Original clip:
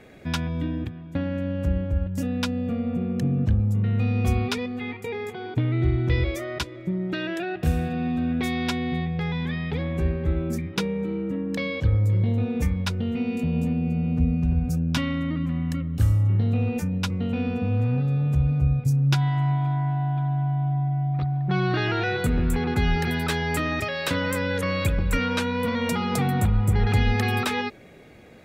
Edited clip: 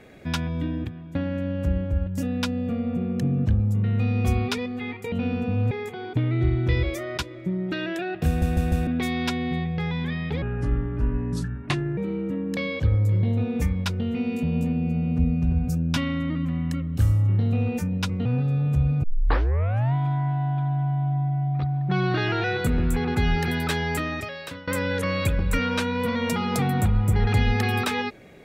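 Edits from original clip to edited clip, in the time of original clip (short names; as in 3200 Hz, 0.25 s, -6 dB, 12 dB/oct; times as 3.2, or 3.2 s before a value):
7.68 stutter in place 0.15 s, 4 plays
9.83–10.98 speed 74%
17.26–17.85 move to 5.12
18.63 tape start 0.91 s
23.44–24.27 fade out, to -20.5 dB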